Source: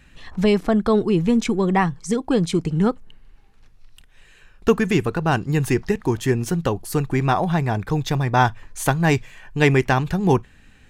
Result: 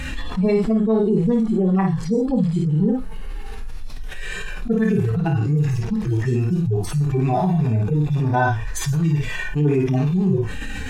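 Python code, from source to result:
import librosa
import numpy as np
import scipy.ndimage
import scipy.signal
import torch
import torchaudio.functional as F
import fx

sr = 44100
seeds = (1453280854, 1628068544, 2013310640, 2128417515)

p1 = fx.hpss_only(x, sr, part='harmonic')
p2 = p1 + fx.room_early_taps(p1, sr, ms=(27, 54, 73), db=(-7.0, -4.0, -17.5), dry=0)
p3 = fx.env_flatten(p2, sr, amount_pct=70)
y = p3 * 10.0 ** (-4.5 / 20.0)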